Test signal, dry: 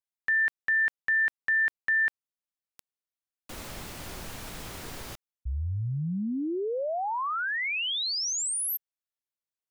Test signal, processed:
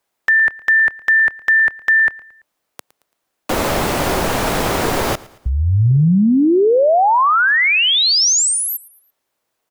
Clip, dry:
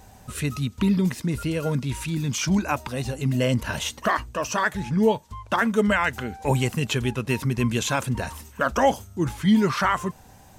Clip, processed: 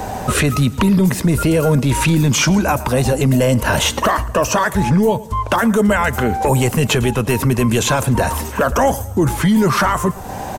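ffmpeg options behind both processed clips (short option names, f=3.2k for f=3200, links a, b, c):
-filter_complex "[0:a]equalizer=f=590:w=0.37:g=11,acrossover=split=110|7600[a][b][c];[a]acompressor=threshold=-37dB:ratio=4[d];[b]acompressor=threshold=-31dB:ratio=4[e];[c]acompressor=threshold=-43dB:ratio=4[f];[d][e][f]amix=inputs=3:normalize=0,aecho=1:1:112|224|336:0.0841|0.0362|0.0156,apsyclip=26dB,volume=-8.5dB"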